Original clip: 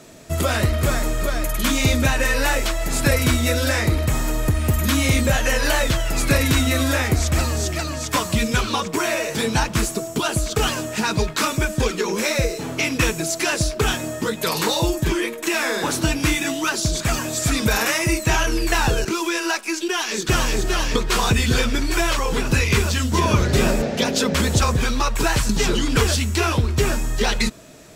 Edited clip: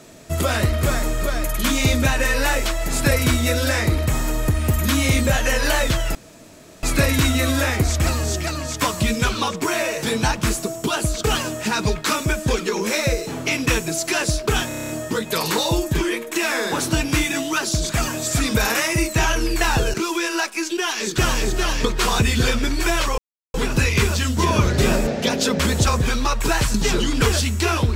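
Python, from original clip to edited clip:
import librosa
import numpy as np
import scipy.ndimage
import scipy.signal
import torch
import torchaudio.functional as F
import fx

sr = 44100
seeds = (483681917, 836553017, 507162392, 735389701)

y = fx.edit(x, sr, fx.insert_room_tone(at_s=6.15, length_s=0.68),
    fx.stutter(start_s=14.0, slice_s=0.03, count=8),
    fx.insert_silence(at_s=22.29, length_s=0.36), tone=tone)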